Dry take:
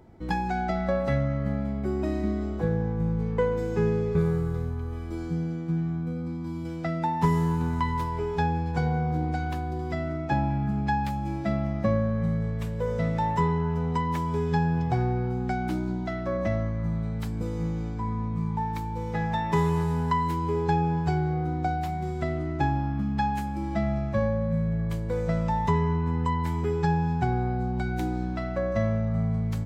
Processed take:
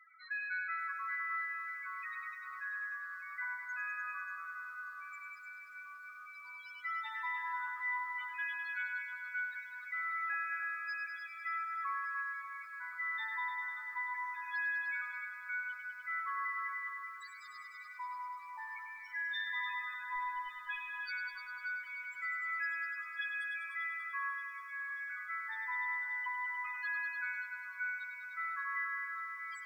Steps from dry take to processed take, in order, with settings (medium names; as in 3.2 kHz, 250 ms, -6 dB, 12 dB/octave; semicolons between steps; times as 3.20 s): steep high-pass 1.1 kHz 72 dB/octave; tilt EQ +2 dB/octave; in parallel at -0.5 dB: upward compressor, threshold -42 dBFS; on the sum: hard clipper -33 dBFS, distortion -8 dB; loudest bins only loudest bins 4; on a send: multi-head delay 100 ms, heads all three, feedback 43%, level -10 dB; on the sum: bit-crushed delay 584 ms, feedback 55%, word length 10-bit, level -13.5 dB; trim -1.5 dB